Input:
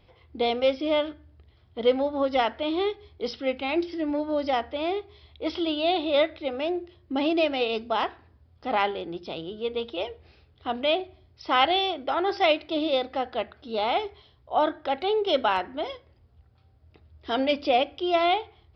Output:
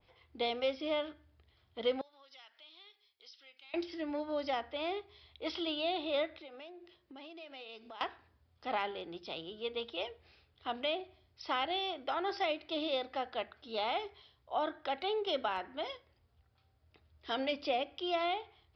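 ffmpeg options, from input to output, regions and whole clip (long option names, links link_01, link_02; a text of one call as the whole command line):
ffmpeg -i in.wav -filter_complex "[0:a]asettb=1/sr,asplit=3[link_01][link_02][link_03];[link_01]atrim=end=2.014[link_04];[link_02]atrim=start=2.01:end=3.74,asetpts=PTS-STARTPTS,afade=type=in:duration=0.004:curve=qsin,afade=type=out:start_time=1.726:duration=0.004:curve=qsin,aderivative,acompressor=threshold=-53dB:ratio=2.5:attack=3.2:release=140:knee=1:detection=peak[link_05];[link_03]atrim=start=3.736[link_06];[link_04][link_05]acrossfade=duration=0.004:curve1=hsin:curve2=qsin[link_07];[link_07][link_06]acrossfade=duration=0.004:curve1=qsin:curve2=hsin,asettb=1/sr,asplit=3[link_08][link_09][link_10];[link_08]atrim=end=6.394[link_11];[link_09]atrim=start=6.39:end=8.01,asetpts=PTS-STARTPTS,afade=type=in:duration=0.004:curve=qsin,afade=type=out:start_time=1.616:duration=0.004:curve=qsin,equalizer=frequency=89:width_type=o:width=0.72:gain=-14.5,acompressor=threshold=-38dB:ratio=12:attack=3.2:release=140:knee=1:detection=peak[link_12];[link_10]atrim=start=8.006[link_13];[link_11][link_12]acrossfade=duration=0.004:curve1=hsin:curve2=qsin[link_14];[link_14][link_13]acrossfade=duration=0.004:curve1=qsin:curve2=hsin,tiltshelf=frequency=680:gain=-5,acrossover=split=490[link_15][link_16];[link_16]acompressor=threshold=-24dB:ratio=6[link_17];[link_15][link_17]amix=inputs=2:normalize=0,adynamicequalizer=threshold=0.0141:dfrequency=2000:dqfactor=0.7:tfrequency=2000:tqfactor=0.7:attack=5:release=100:ratio=0.375:range=2:mode=cutabove:tftype=highshelf,volume=-8dB" out.wav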